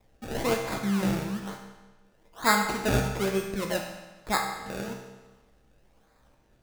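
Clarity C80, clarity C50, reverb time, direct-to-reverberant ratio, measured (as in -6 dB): 6.5 dB, 4.5 dB, 1.2 s, 1.0 dB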